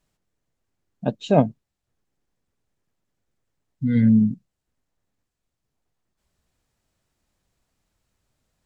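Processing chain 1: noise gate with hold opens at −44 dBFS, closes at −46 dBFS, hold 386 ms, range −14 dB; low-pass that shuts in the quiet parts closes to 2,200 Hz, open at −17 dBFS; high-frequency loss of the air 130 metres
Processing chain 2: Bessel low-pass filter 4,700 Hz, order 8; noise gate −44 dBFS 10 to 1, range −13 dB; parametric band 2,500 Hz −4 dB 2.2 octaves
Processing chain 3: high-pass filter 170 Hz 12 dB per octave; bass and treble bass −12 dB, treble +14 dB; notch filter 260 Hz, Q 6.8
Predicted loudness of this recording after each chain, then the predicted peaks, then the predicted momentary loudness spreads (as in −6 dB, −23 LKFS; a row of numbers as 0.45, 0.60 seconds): −21.0, −21.0, −27.0 LKFS; −2.5, −3.0, −6.0 dBFS; 13, 13, 12 LU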